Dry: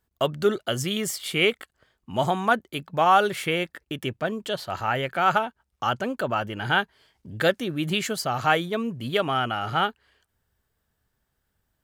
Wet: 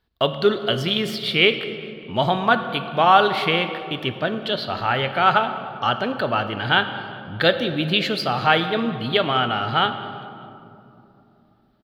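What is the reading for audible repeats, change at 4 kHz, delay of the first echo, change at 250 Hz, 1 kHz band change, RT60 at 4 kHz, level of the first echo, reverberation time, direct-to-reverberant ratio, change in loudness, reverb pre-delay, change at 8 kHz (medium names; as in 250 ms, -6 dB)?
3, +8.0 dB, 198 ms, +4.0 dB, +4.0 dB, 1.3 s, -21.5 dB, 3.0 s, 8.0 dB, +4.5 dB, 4 ms, under -10 dB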